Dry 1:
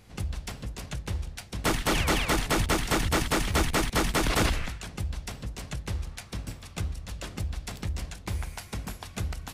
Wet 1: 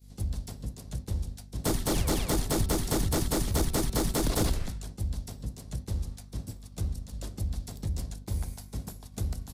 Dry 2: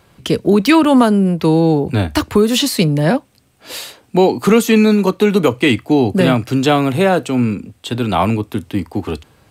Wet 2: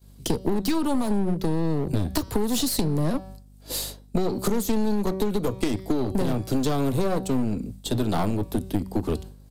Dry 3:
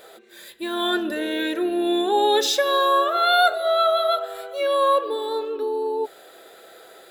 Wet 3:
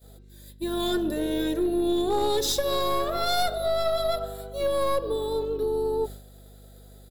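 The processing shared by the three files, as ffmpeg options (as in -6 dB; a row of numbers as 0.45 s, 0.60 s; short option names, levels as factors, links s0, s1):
-filter_complex "[0:a]aeval=exprs='0.891*(cos(1*acos(clip(val(0)/0.891,-1,1)))-cos(1*PI/2))+0.2*(cos(4*acos(clip(val(0)/0.891,-1,1)))-cos(4*PI/2))':c=same,acrossover=split=150|680|2000[s0][s1][s2][s3];[s3]acompressor=mode=upward:threshold=0.00631:ratio=2.5[s4];[s0][s1][s2][s4]amix=inputs=4:normalize=0,bandreject=f=190:t=h:w=4,bandreject=f=380:t=h:w=4,bandreject=f=570:t=h:w=4,bandreject=f=760:t=h:w=4,bandreject=f=950:t=h:w=4,bandreject=f=1140:t=h:w=4,bandreject=f=1330:t=h:w=4,bandreject=f=1520:t=h:w=4,bandreject=f=1710:t=h:w=4,bandreject=f=1900:t=h:w=4,bandreject=f=2090:t=h:w=4,bandreject=f=2280:t=h:w=4,bandreject=f=2470:t=h:w=4,bandreject=f=2660:t=h:w=4,bandreject=f=2850:t=h:w=4,bandreject=f=3040:t=h:w=4,bandreject=f=3230:t=h:w=4,bandreject=f=3420:t=h:w=4,bandreject=f=3610:t=h:w=4,bandreject=f=3800:t=h:w=4,bandreject=f=3990:t=h:w=4,bandreject=f=4180:t=h:w=4,bandreject=f=4370:t=h:w=4,bandreject=f=4560:t=h:w=4,bandreject=f=4750:t=h:w=4,bandreject=f=4940:t=h:w=4,bandreject=f=5130:t=h:w=4,bandreject=f=5320:t=h:w=4,bandreject=f=5510:t=h:w=4,bandreject=f=5700:t=h:w=4,bandreject=f=5890:t=h:w=4,aexciter=amount=4.3:drive=3:freq=3700,firequalizer=gain_entry='entry(380,0);entry(1300,-10);entry(2400,-12)':delay=0.05:min_phase=1,aeval=exprs='val(0)+0.0112*(sin(2*PI*50*n/s)+sin(2*PI*2*50*n/s)/2+sin(2*PI*3*50*n/s)/3+sin(2*PI*4*50*n/s)/4+sin(2*PI*5*50*n/s)/5)':c=same,agate=range=0.0224:threshold=0.0251:ratio=3:detection=peak,alimiter=limit=0.501:level=0:latency=1:release=232,aeval=exprs='clip(val(0),-1,0.106)':c=same,acompressor=threshold=0.1:ratio=6"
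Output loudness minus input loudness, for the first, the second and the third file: -2.0 LU, -12.0 LU, -5.5 LU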